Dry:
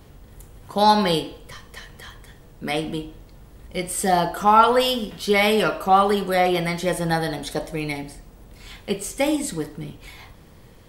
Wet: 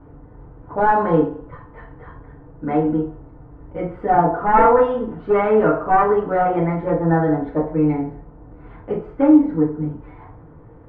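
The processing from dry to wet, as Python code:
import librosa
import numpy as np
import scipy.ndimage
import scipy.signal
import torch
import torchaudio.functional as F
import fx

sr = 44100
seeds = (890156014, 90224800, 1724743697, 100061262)

y = np.minimum(x, 2.0 * 10.0 ** (-14.5 / 20.0) - x)
y = scipy.signal.sosfilt(scipy.signal.butter(4, 1400.0, 'lowpass', fs=sr, output='sos'), y)
y = fx.rev_fdn(y, sr, rt60_s=0.36, lf_ratio=1.0, hf_ratio=0.8, size_ms=20.0, drr_db=-4.5)
y = F.gain(torch.from_numpy(y), -1.0).numpy()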